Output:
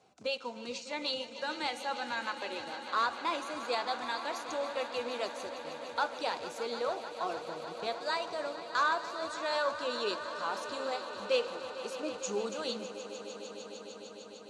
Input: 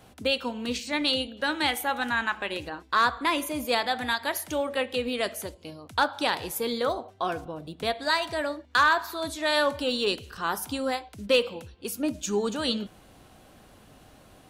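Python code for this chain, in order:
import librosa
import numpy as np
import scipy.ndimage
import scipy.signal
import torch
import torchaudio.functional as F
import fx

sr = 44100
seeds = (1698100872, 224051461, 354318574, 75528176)

p1 = fx.spec_quant(x, sr, step_db=15)
p2 = fx.quant_dither(p1, sr, seeds[0], bits=6, dither='none')
p3 = p1 + (p2 * librosa.db_to_amplitude(-10.0))
p4 = fx.cabinet(p3, sr, low_hz=230.0, low_slope=12, high_hz=7300.0, hz=(270.0, 1800.0, 3200.0, 6800.0), db=(-9, -8, -7, 3))
p5 = fx.echo_swell(p4, sr, ms=151, loudest=5, wet_db=-15)
y = p5 * librosa.db_to_amplitude(-8.5)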